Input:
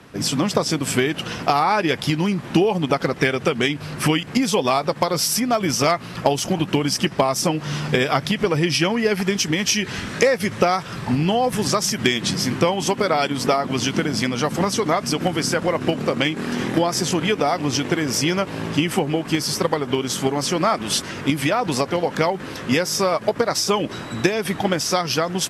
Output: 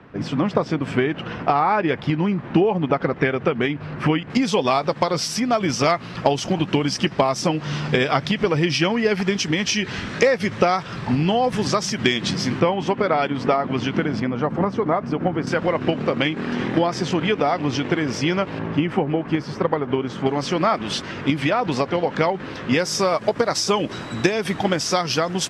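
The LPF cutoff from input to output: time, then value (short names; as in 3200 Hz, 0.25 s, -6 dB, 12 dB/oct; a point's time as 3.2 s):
2100 Hz
from 4.3 s 5100 Hz
from 12.6 s 2500 Hz
from 14.2 s 1400 Hz
from 15.47 s 3500 Hz
from 18.59 s 1900 Hz
from 20.26 s 3900 Hz
from 22.79 s 7600 Hz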